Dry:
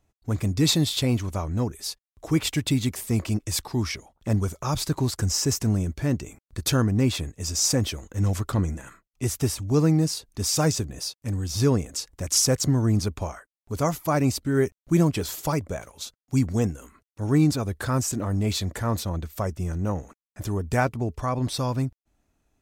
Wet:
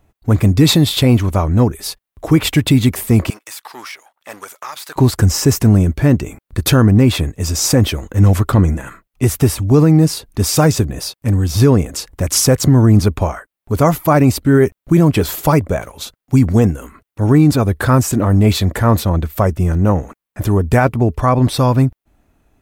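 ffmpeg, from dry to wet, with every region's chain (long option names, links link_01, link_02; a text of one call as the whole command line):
ffmpeg -i in.wav -filter_complex "[0:a]asettb=1/sr,asplit=3[link_01][link_02][link_03];[link_01]atrim=end=3.304[link_04];[link_02]atrim=start=3.3:end=4.96,asetpts=PTS-STARTPTS,afade=type=in:duration=0.004:curve=qsin,afade=type=out:start_time=1.656:duration=0.004:curve=qsin,aeval=exprs='if(lt(val(0),0),0.447*val(0),val(0))':channel_layout=same,highpass=1100,acompressor=threshold=-36dB:ratio=6:attack=3.2:release=140:knee=1:detection=peak[link_05];[link_03]atrim=start=4.956[link_06];[link_04][link_05]acrossfade=duration=0.004:curve1=hsin:curve2=qsin[link_07];[link_07][link_06]acrossfade=duration=0.004:curve1=qsin:curve2=hsin,equalizer=frequency=6100:width_type=o:width=1.4:gain=-9,alimiter=level_in=14.5dB:limit=-1dB:release=50:level=0:latency=1,volume=-1dB" out.wav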